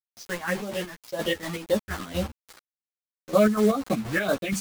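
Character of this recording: phasing stages 4, 1.9 Hz, lowest notch 470–2400 Hz; a quantiser's noise floor 6-bit, dither none; chopped level 4.2 Hz, depth 60%, duty 55%; a shimmering, thickened sound

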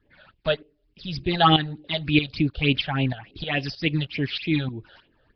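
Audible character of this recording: tremolo saw up 3.2 Hz, depth 75%; phasing stages 8, 3.4 Hz, lowest notch 280–1500 Hz; Nellymoser

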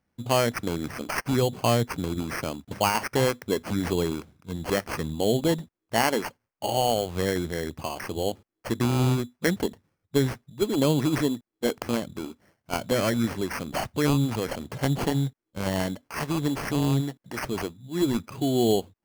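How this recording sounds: aliases and images of a low sample rate 3700 Hz, jitter 0%

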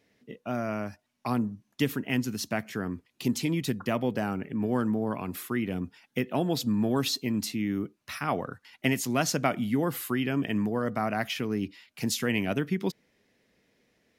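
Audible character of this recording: noise floor -75 dBFS; spectral tilt -5.0 dB/oct

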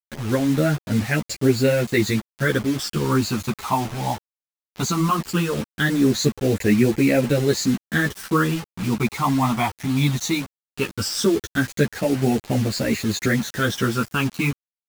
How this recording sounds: phasing stages 12, 0.18 Hz, lowest notch 490–1100 Hz; a quantiser's noise floor 6-bit, dither none; a shimmering, thickened sound

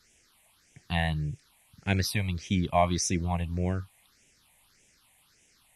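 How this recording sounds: a quantiser's noise floor 10-bit, dither triangular; phasing stages 6, 1.7 Hz, lowest notch 350–1200 Hz; AC-3

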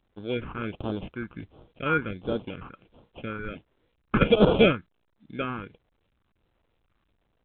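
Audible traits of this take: aliases and images of a low sample rate 1900 Hz, jitter 0%; phasing stages 4, 1.4 Hz, lowest notch 600–2100 Hz; A-law

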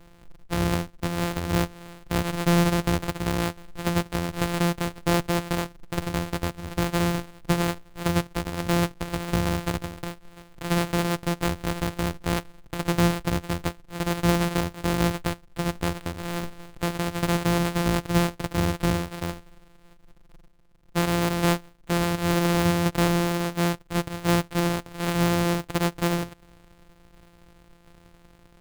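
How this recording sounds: a buzz of ramps at a fixed pitch in blocks of 256 samples; tremolo saw down 1.4 Hz, depth 35%; aliases and images of a low sample rate 5900 Hz, jitter 20%

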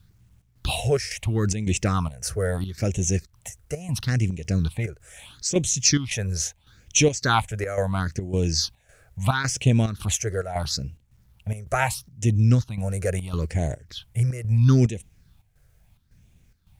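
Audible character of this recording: phasing stages 6, 0.75 Hz, lowest notch 240–1300 Hz; a quantiser's noise floor 12-bit, dither none; chopped level 1.8 Hz, depth 65%, duty 75%

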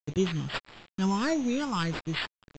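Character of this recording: a quantiser's noise floor 8-bit, dither none; phasing stages 8, 1.6 Hz, lowest notch 570–1400 Hz; aliases and images of a low sample rate 6300 Hz, jitter 0%; µ-law

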